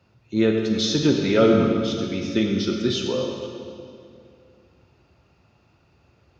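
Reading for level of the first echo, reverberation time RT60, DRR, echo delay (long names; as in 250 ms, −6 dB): no echo audible, 2.5 s, 1.5 dB, no echo audible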